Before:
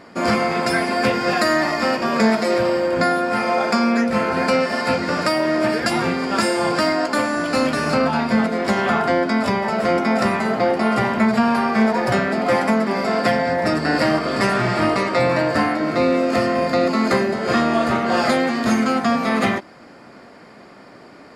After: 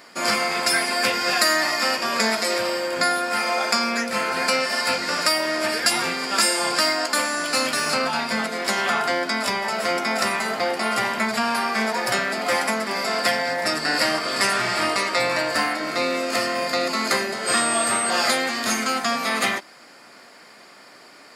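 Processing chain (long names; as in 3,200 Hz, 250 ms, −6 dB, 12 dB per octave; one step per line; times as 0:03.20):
spectral tilt +4 dB per octave
0:17.46–0:18.09: steady tone 8,300 Hz −20 dBFS
level −3 dB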